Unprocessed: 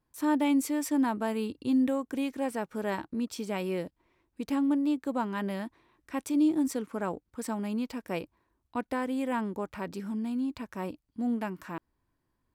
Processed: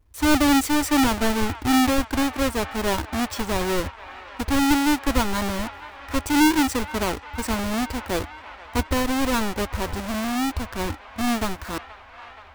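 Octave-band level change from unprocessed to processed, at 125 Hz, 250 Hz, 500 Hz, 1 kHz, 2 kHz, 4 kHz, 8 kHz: +12.0 dB, +6.0 dB, +7.0 dB, +11.0 dB, +14.0 dB, +18.0 dB, +14.0 dB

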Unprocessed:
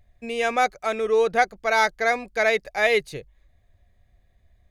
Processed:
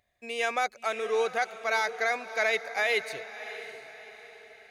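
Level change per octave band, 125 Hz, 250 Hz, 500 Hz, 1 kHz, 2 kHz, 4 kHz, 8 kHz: under -10 dB, -12.5 dB, -7.5 dB, -7.5 dB, -4.5 dB, -3.5 dB, -4.0 dB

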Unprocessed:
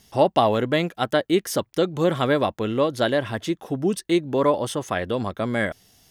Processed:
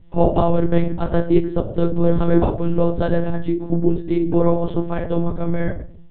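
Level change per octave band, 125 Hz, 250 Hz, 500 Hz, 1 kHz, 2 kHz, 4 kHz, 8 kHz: +8.5 dB, +5.5 dB, +1.5 dB, -2.0 dB, -7.5 dB, under -10 dB, under -40 dB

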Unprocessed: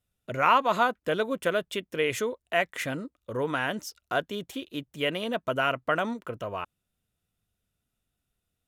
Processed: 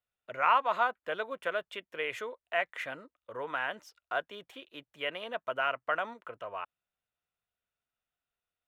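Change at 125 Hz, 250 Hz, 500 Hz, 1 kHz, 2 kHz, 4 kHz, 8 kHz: -19.5 dB, -17.0 dB, -7.5 dB, -4.0 dB, -4.0 dB, -7.0 dB, -16.5 dB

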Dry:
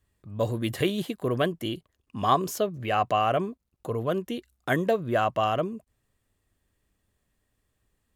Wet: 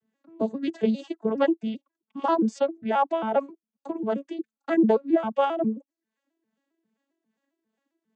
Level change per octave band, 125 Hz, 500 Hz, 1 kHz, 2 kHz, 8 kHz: under -10 dB, +1.5 dB, -1.0 dB, -5.5 dB, under -10 dB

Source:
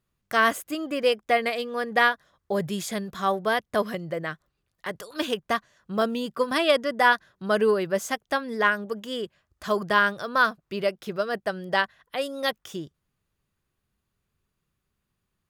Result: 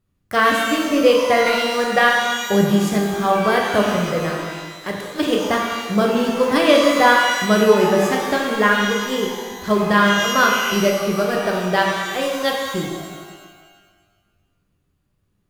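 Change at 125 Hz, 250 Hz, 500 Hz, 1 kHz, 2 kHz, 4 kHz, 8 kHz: +13.0 dB, +12.0 dB, +8.5 dB, +7.5 dB, +6.5 dB, +9.0 dB, +12.5 dB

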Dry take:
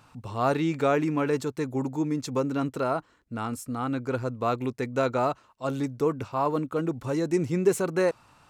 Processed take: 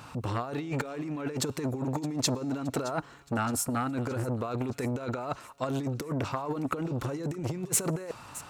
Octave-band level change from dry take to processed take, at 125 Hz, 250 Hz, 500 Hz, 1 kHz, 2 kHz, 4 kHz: -0.5 dB, -4.0 dB, -8.5 dB, -5.5 dB, -4.5 dB, +4.0 dB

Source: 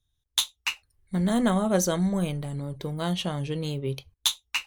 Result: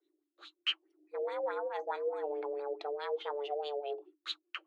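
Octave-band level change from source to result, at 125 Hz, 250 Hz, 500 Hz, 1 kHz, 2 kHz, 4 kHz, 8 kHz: under -40 dB, -29.0 dB, -4.0 dB, -4.5 dB, -10.0 dB, -10.0 dB, under -30 dB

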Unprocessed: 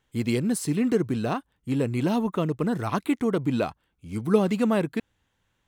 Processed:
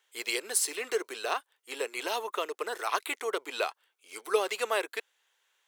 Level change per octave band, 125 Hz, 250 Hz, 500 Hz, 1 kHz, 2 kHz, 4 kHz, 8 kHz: under -40 dB, -23.5 dB, -5.5 dB, -1.0 dB, +3.0 dB, +5.0 dB, +6.0 dB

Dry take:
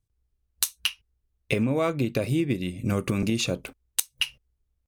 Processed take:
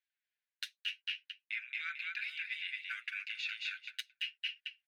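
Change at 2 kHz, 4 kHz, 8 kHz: -2.5 dB, -8.0 dB, under -25 dB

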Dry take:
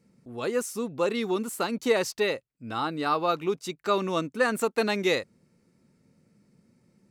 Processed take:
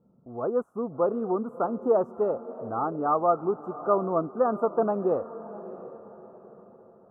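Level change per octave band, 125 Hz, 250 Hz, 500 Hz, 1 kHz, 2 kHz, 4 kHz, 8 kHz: -0.5 dB, 0.0 dB, +2.0 dB, +2.0 dB, -17.5 dB, under -40 dB, under -40 dB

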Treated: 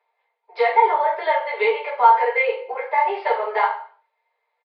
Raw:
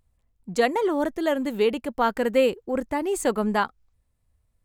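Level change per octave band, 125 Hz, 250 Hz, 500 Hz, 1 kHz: no reading, under -20 dB, +1.0 dB, +11.5 dB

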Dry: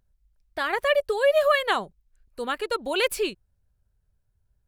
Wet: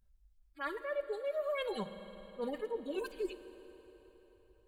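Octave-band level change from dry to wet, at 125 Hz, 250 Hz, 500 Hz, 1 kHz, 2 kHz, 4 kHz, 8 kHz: no reading, -6.0 dB, -13.0 dB, -17.0 dB, -18.0 dB, -19.5 dB, under -20 dB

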